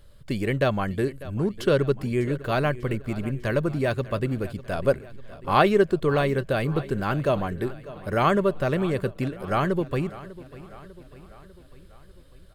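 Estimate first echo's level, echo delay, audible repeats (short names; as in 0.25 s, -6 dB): -17.5 dB, 0.597 s, 4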